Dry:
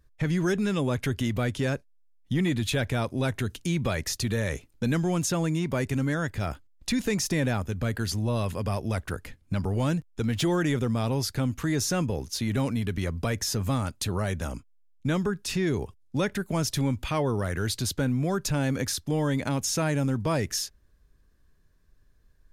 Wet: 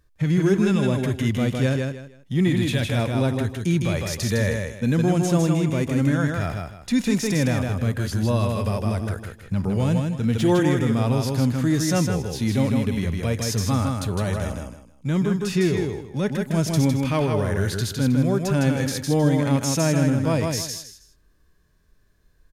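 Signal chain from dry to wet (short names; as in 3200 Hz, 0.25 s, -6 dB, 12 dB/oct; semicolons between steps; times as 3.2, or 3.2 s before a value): low shelf 73 Hz -8 dB; feedback echo 0.158 s, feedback 25%, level -4.5 dB; harmonic-percussive split percussive -12 dB; gain +7.5 dB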